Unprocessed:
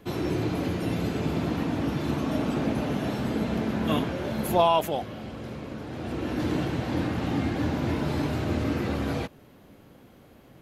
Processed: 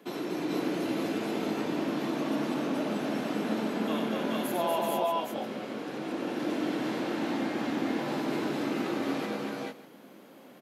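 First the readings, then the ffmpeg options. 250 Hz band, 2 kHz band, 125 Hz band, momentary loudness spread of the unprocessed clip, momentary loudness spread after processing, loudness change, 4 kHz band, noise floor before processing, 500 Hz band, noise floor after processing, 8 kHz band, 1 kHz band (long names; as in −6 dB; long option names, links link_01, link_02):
−2.5 dB, −1.0 dB, −13.5 dB, 8 LU, 6 LU, −3.5 dB, −2.0 dB, −53 dBFS, −2.0 dB, −52 dBFS, −1.0 dB, −3.5 dB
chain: -af "highpass=frequency=210:width=0.5412,highpass=frequency=210:width=1.3066,acompressor=threshold=-33dB:ratio=2,aecho=1:1:94|240|426|441|460|595:0.562|0.668|0.562|0.668|0.447|0.133,volume=-1.5dB"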